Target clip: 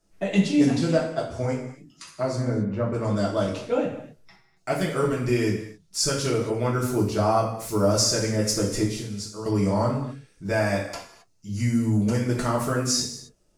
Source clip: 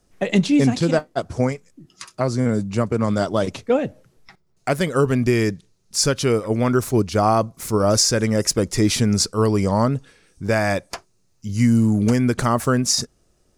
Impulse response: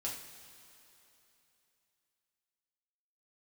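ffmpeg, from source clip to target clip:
-filter_complex "[0:a]asplit=3[a][b][c];[a]afade=t=out:st=2.37:d=0.02[d];[b]lowpass=1.9k,afade=t=in:st=2.37:d=0.02,afade=t=out:st=2.92:d=0.02[e];[c]afade=t=in:st=2.92:d=0.02[f];[d][e][f]amix=inputs=3:normalize=0,asettb=1/sr,asplit=3[g][h][i];[g]atrim=end=8.834[j];[h]atrim=start=8.83:end=9.46,asetpts=PTS-STARTPTS,afade=t=in:d=0.004:c=qsin,afade=t=out:st=0.626:d=0.004:c=qsin,acompressor=threshold=-28dB:ratio=4[k];[i]atrim=start=9.456[l];[j][k]acrossfade=d=0.004:c1=hsin:c2=qsin[m];[m][l]acrossfade=d=0.004:c1=qsin:c2=hsin[n];[1:a]atrim=start_sample=2205,afade=t=out:st=0.33:d=0.01,atrim=end_sample=14994[o];[n][o]afir=irnorm=-1:irlink=0,volume=-5dB"

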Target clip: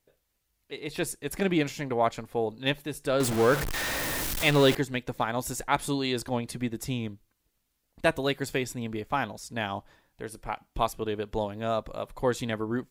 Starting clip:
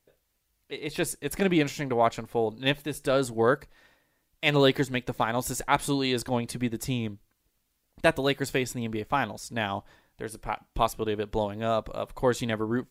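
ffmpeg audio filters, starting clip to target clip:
-filter_complex "[0:a]asettb=1/sr,asplit=3[a][b][c];[a]atrim=end=3.204[d];[b]atrim=start=3.2:end=4.75,asetpts=PTS-STARTPTS,afade=t=in:d=0.004:c=qsin,afade=t=out:st=1.546:d=0.004:c=qsin,aeval=exprs='val(0)+0.5*0.075*sgn(val(0))':c=same[e];[c]atrim=start=4.746[f];[d][e]acrossfade=d=0.004:c1=hsin:c2=qsin[g];[g][f]acrossfade=d=0.004:c1=qsin:c2=hsin,volume=-2dB"

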